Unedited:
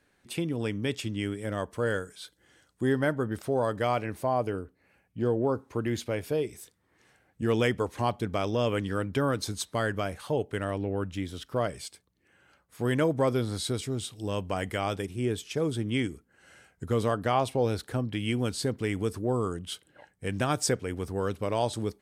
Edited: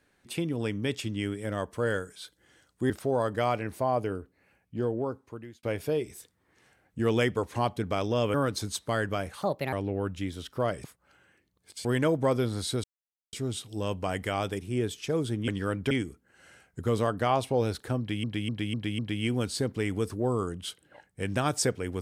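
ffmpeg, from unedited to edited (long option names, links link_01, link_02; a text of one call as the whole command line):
ffmpeg -i in.wav -filter_complex "[0:a]asplit=15[link_01][link_02][link_03][link_04][link_05][link_06][link_07][link_08][link_09][link_10][link_11][link_12][link_13][link_14][link_15];[link_01]atrim=end=2.902[link_16];[link_02]atrim=start=3.328:end=6.06,asetpts=PTS-STARTPTS,afade=type=out:start_time=1.282:duration=1.45:curve=qsin[link_17];[link_03]atrim=start=6.06:end=8.772,asetpts=PTS-STARTPTS,afade=type=in:duration=0.004:curve=hsin[link_18];[link_04]atrim=start=9.198:end=10.284[link_19];[link_05]atrim=start=10.28:end=10.69,asetpts=PTS-STARTPTS,asetrate=58653,aresample=44100[link_20];[link_06]atrim=start=10.686:end=11.802[link_21];[link_07]atrim=start=11.798:end=12.812,asetpts=PTS-STARTPTS,areverse[link_22];[link_08]atrim=start=12.808:end=13.8,asetpts=PTS-STARTPTS,afade=type=out:start_time=0.988:duration=0.004:curve=hsin,apad=pad_dur=0.49[link_23];[link_09]atrim=start=13.8:end=15.952,asetpts=PTS-STARTPTS,afade=type=in:duration=0.004:curve=hsin[link_24];[link_10]atrim=start=8.768:end=9.202[link_25];[link_11]atrim=start=15.948:end=18.282[link_26];[link_12]atrim=start=18.028:end=18.282[link_27];[link_13]atrim=start=18.028:end=18.282[link_28];[link_14]atrim=start=18.028:end=18.282[link_29];[link_15]atrim=start=18.028[link_30];[link_17][link_18]concat=n=2:v=0:a=1[link_31];[link_16][link_31]acrossfade=duration=0.004:curve1=hsin:curve2=hsin[link_32];[link_32][link_19]acrossfade=duration=0.004:curve1=hsin:curve2=hsin[link_33];[link_33][link_20]acrossfade=duration=0.004:curve1=hsin:curve2=hsin[link_34];[link_34][link_21]acrossfade=duration=0.004:curve1=hsin:curve2=hsin[link_35];[link_35][link_22]acrossfade=duration=0.004:curve1=hsin:curve2=hsin[link_36];[link_23][link_24]concat=n=2:v=0:a=1[link_37];[link_36][link_37]acrossfade=duration=0.004:curve1=hsin:curve2=hsin[link_38];[link_38][link_25]acrossfade=duration=0.004:curve1=hsin:curve2=hsin[link_39];[link_39][link_26]acrossfade=duration=0.004:curve1=hsin:curve2=hsin[link_40];[link_40][link_27]acrossfade=duration=0.004:curve1=hsin:curve2=hsin[link_41];[link_41][link_28]acrossfade=duration=0.004:curve1=hsin:curve2=hsin[link_42];[link_42][link_29]acrossfade=duration=0.004:curve1=hsin:curve2=hsin[link_43];[link_43][link_30]acrossfade=duration=0.004:curve1=hsin:curve2=hsin" out.wav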